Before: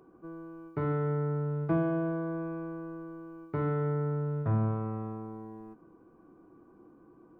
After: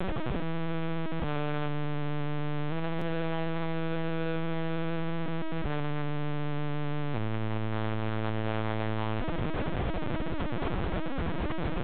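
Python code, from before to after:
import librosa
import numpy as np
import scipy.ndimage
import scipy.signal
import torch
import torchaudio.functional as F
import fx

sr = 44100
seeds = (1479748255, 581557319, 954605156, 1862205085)

p1 = x + 0.5 * 10.0 ** (-37.5 / 20.0) * np.sign(x)
p2 = fx.high_shelf(p1, sr, hz=2300.0, db=-5.5)
p3 = fx.over_compress(p2, sr, threshold_db=-40.0, ratio=-1.0)
p4 = p2 + (p3 * 10.0 ** (1.5 / 20.0))
p5 = fx.stretch_vocoder(p4, sr, factor=1.6)
p6 = fx.schmitt(p5, sr, flips_db=-39.5)
p7 = fx.air_absorb(p6, sr, metres=94.0)
p8 = fx.echo_wet_highpass(p7, sr, ms=213, feedback_pct=55, hz=1900.0, wet_db=-22.5)
p9 = fx.lpc_vocoder(p8, sr, seeds[0], excitation='pitch_kept', order=8)
y = fx.buffer_glitch(p9, sr, at_s=(2.98,), block=512, repeats=2)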